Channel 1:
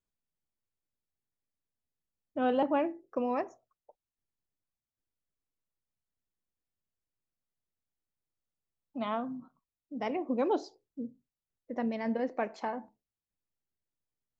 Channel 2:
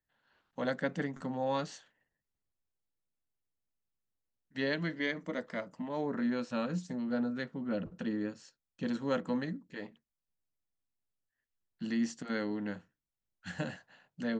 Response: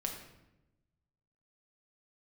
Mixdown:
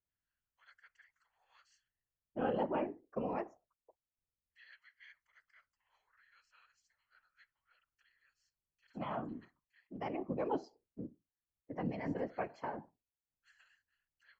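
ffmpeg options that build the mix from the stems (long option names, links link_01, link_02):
-filter_complex "[0:a]bass=frequency=250:gain=0,treble=frequency=4000:gain=-7,volume=-0.5dB,asplit=2[link_01][link_02];[1:a]highpass=frequency=1400:width=0.5412,highpass=frequency=1400:width=1.3066,highshelf=frequency=5600:gain=-4,volume=-15dB[link_03];[link_02]apad=whole_len=634869[link_04];[link_03][link_04]sidechaincompress=threshold=-36dB:ratio=8:attack=16:release=141[link_05];[link_01][link_05]amix=inputs=2:normalize=0,afftfilt=real='hypot(re,im)*cos(2*PI*random(0))':imag='hypot(re,im)*sin(2*PI*random(1))':win_size=512:overlap=0.75,asuperstop=centerf=3700:order=4:qfactor=5.1"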